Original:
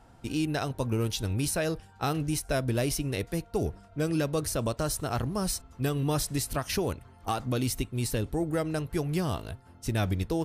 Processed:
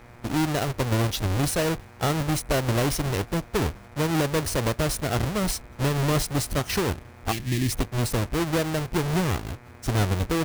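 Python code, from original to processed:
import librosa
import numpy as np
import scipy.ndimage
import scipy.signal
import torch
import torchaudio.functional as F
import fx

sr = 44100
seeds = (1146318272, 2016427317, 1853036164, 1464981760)

y = fx.halfwave_hold(x, sr)
y = fx.spec_box(y, sr, start_s=7.32, length_s=0.39, low_hz=400.0, high_hz=1600.0, gain_db=-21)
y = fx.dmg_buzz(y, sr, base_hz=120.0, harmonics=21, level_db=-51.0, tilt_db=-3, odd_only=False)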